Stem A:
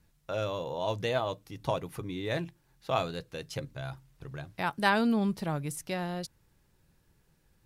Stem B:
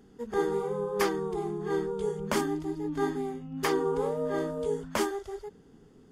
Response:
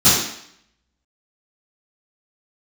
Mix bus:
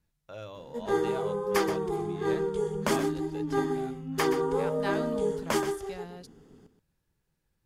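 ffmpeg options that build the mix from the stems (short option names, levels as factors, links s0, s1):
-filter_complex "[0:a]volume=0.316[s0];[1:a]adelay=550,volume=1.12,asplit=2[s1][s2];[s2]volume=0.299,aecho=0:1:126:1[s3];[s0][s1][s3]amix=inputs=3:normalize=0"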